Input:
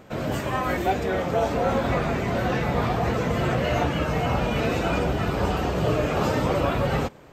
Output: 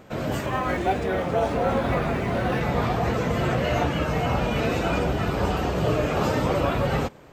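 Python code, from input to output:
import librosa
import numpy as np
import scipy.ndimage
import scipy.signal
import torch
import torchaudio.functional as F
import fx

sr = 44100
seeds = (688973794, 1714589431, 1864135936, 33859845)

y = fx.resample_linear(x, sr, factor=3, at=(0.46, 2.61))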